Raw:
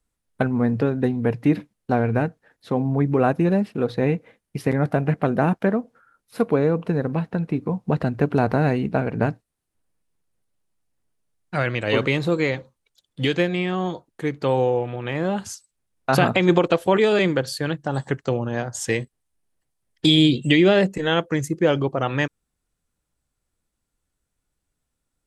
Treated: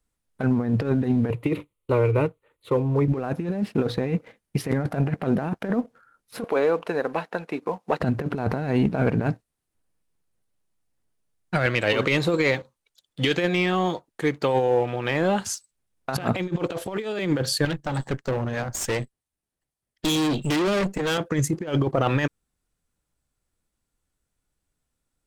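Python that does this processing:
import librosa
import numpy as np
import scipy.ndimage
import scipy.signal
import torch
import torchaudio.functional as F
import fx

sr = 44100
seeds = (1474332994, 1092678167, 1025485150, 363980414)

y = fx.fixed_phaser(x, sr, hz=1100.0, stages=8, at=(1.3, 3.08))
y = fx.highpass(y, sr, hz=530.0, slope=12, at=(6.44, 8.0))
y = fx.low_shelf(y, sr, hz=350.0, db=-6.5, at=(11.66, 15.52))
y = fx.tube_stage(y, sr, drive_db=26.0, bias=0.75, at=(17.65, 21.18))
y = fx.over_compress(y, sr, threshold_db=-23.0, ratio=-0.5)
y = fx.leveller(y, sr, passes=1)
y = y * 10.0 ** (-1.5 / 20.0)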